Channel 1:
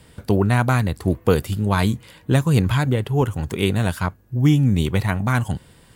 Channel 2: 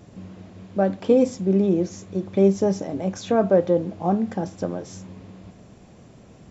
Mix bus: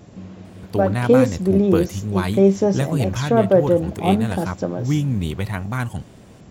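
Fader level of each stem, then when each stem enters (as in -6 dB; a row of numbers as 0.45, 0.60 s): -4.5, +3.0 dB; 0.45, 0.00 s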